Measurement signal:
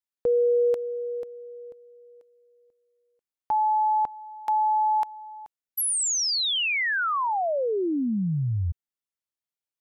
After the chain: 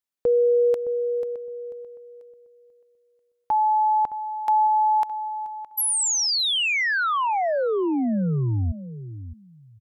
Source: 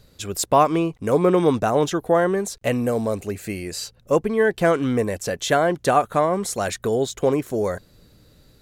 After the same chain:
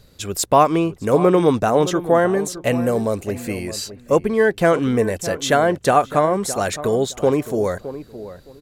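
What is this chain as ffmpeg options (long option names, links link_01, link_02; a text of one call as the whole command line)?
ffmpeg -i in.wav -filter_complex "[0:a]asplit=2[link_01][link_02];[link_02]adelay=615,lowpass=frequency=1400:poles=1,volume=-13dB,asplit=2[link_03][link_04];[link_04]adelay=615,lowpass=frequency=1400:poles=1,volume=0.21[link_05];[link_01][link_03][link_05]amix=inputs=3:normalize=0,volume=2.5dB" out.wav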